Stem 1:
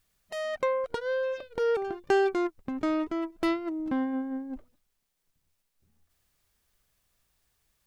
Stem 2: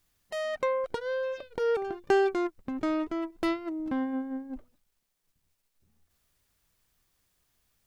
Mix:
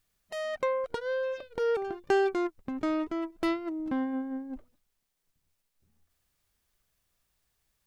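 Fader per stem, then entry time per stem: −3.5, −14.5 decibels; 0.00, 0.00 seconds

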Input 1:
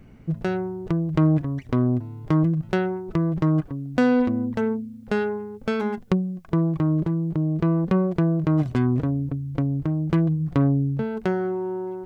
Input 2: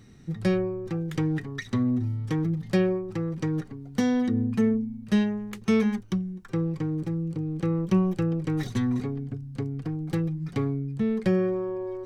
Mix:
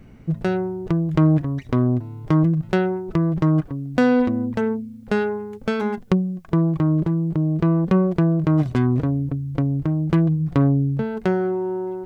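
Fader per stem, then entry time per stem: +2.5, −15.0 decibels; 0.00, 0.00 seconds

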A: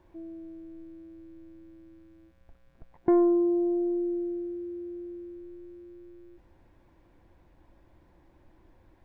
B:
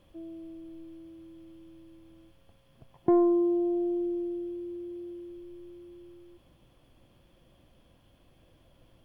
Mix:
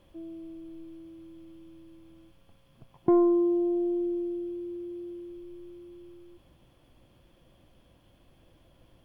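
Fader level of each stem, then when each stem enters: −11.0, +0.5 decibels; 0.00, 0.00 seconds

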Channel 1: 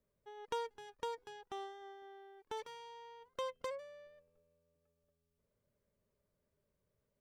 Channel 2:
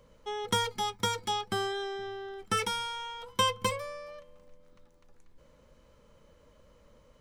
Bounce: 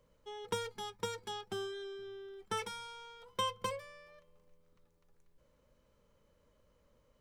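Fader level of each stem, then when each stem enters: +2.0, −11.0 decibels; 0.00, 0.00 seconds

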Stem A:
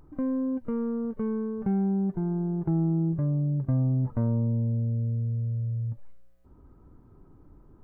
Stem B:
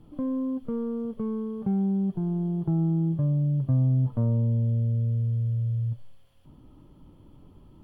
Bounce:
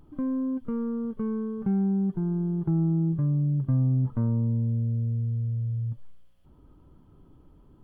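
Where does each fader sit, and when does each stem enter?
−2.5, −8.5 decibels; 0.00, 0.00 seconds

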